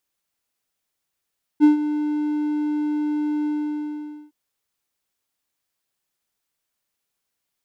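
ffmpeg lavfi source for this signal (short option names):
-f lavfi -i "aevalsrc='0.501*(1-4*abs(mod(299*t+0.25,1)-0.5))':d=2.713:s=44100,afade=t=in:d=0.039,afade=t=out:st=0.039:d=0.126:silence=0.237,afade=t=out:st=1.86:d=0.853"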